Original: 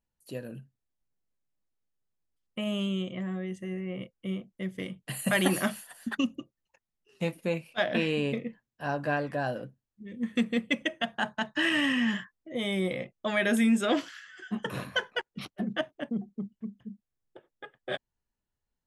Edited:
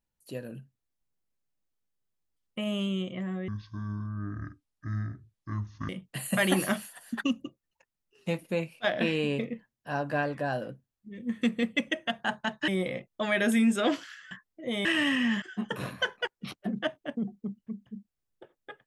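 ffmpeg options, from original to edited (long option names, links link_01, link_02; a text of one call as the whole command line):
ffmpeg -i in.wav -filter_complex "[0:a]asplit=7[link_01][link_02][link_03][link_04][link_05][link_06][link_07];[link_01]atrim=end=3.484[link_08];[link_02]atrim=start=3.48:end=4.83,asetpts=PTS-STARTPTS,asetrate=24696,aresample=44100,atrim=end_sample=106312,asetpts=PTS-STARTPTS[link_09];[link_03]atrim=start=4.826:end=11.622[link_10];[link_04]atrim=start=12.728:end=14.362[link_11];[link_05]atrim=start=12.188:end=12.732[link_12];[link_06]atrim=start=11.618:end=12.192[link_13];[link_07]atrim=start=14.358[link_14];[link_08][link_09]acrossfade=duration=0.004:curve1=hsin:curve2=hsin[link_15];[link_15][link_10]acrossfade=duration=0.004:curve1=hsin:curve2=hsin[link_16];[link_16][link_11]acrossfade=duration=0.004:curve1=hsin:curve2=hsin[link_17];[link_17][link_12]acrossfade=duration=0.004:curve1=hsin:curve2=hsin[link_18];[link_18][link_13]acrossfade=duration=0.004:curve1=hsin:curve2=hsin[link_19];[link_19][link_14]acrossfade=duration=0.004:curve1=hsin:curve2=hsin" out.wav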